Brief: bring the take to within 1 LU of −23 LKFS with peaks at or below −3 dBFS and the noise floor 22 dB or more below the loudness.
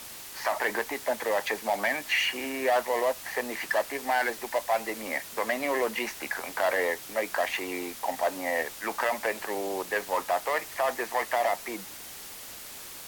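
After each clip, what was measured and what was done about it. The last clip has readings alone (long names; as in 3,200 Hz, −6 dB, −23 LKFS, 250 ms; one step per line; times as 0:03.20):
background noise floor −43 dBFS; target noise floor −51 dBFS; integrated loudness −29.0 LKFS; sample peak −15.0 dBFS; target loudness −23.0 LKFS
→ broadband denoise 8 dB, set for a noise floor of −43 dBFS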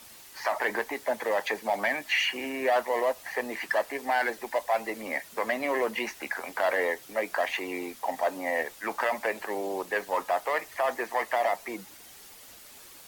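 background noise floor −50 dBFS; target noise floor −52 dBFS
→ broadband denoise 6 dB, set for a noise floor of −50 dBFS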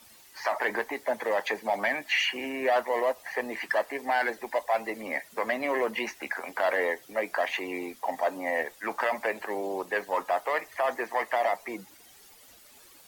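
background noise floor −55 dBFS; integrated loudness −29.5 LKFS; sample peak −15.5 dBFS; target loudness −23.0 LKFS
→ level +6.5 dB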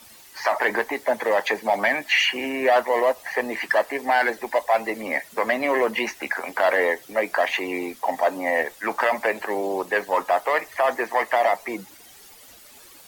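integrated loudness −23.0 LKFS; sample peak −9.0 dBFS; background noise floor −48 dBFS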